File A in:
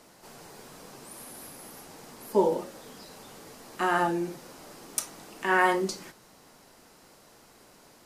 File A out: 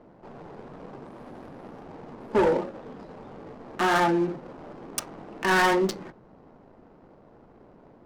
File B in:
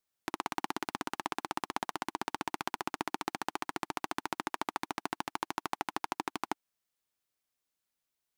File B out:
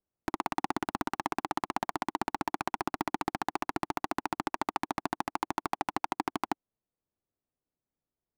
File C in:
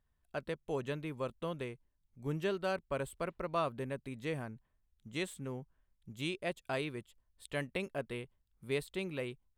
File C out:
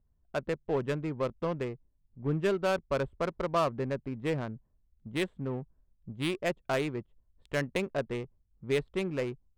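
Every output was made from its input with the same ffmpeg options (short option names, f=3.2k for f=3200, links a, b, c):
-af "adynamicsmooth=sensitivity=8:basefreq=620,asoftclip=type=tanh:threshold=-24dB,volume=7.5dB"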